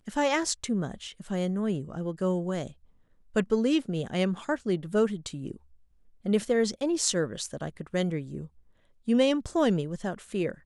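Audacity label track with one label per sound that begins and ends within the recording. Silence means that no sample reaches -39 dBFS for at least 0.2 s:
3.350000	5.560000	sound
6.250000	8.460000	sound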